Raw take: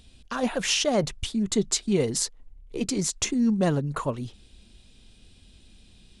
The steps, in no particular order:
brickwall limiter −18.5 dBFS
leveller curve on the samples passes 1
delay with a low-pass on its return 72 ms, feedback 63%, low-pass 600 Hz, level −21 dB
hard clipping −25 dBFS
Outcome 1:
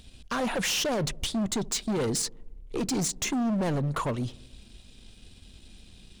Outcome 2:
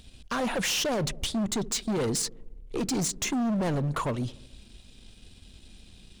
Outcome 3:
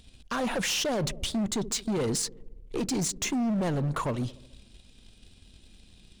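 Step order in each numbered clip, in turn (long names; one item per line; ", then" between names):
brickwall limiter, then leveller curve on the samples, then hard clipping, then delay with a low-pass on its return
brickwall limiter, then delay with a low-pass on its return, then leveller curve on the samples, then hard clipping
leveller curve on the samples, then delay with a low-pass on its return, then brickwall limiter, then hard clipping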